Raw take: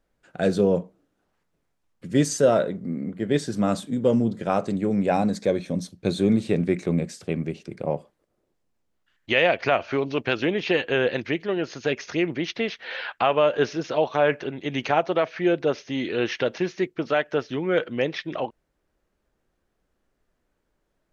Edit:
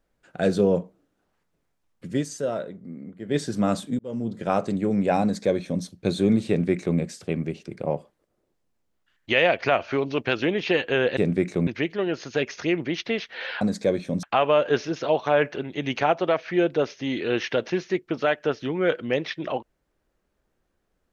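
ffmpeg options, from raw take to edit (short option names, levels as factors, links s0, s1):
-filter_complex "[0:a]asplit=8[s0][s1][s2][s3][s4][s5][s6][s7];[s0]atrim=end=2.23,asetpts=PTS-STARTPTS,afade=t=out:st=2.07:d=0.16:silence=0.354813[s8];[s1]atrim=start=2.23:end=3.24,asetpts=PTS-STARTPTS,volume=0.355[s9];[s2]atrim=start=3.24:end=3.99,asetpts=PTS-STARTPTS,afade=t=in:d=0.16:silence=0.354813,afade=t=out:st=0.746:d=0.004:c=hsin[s10];[s3]atrim=start=3.99:end=11.172,asetpts=PTS-STARTPTS,afade=t=in:d=0.5[s11];[s4]atrim=start=6.478:end=6.982[s12];[s5]atrim=start=11.168:end=13.112[s13];[s6]atrim=start=5.218:end=5.842[s14];[s7]atrim=start=13.108[s15];[s8][s9][s10][s11]concat=n=4:v=0:a=1[s16];[s16][s12]acrossfade=d=0.004:c1=hsin:c2=hsin[s17];[s17][s13]acrossfade=d=0.004:c1=hsin:c2=hsin[s18];[s18][s14]acrossfade=d=0.004:c1=hsin:c2=hsin[s19];[s19][s15]acrossfade=d=0.004:c1=hsin:c2=hsin"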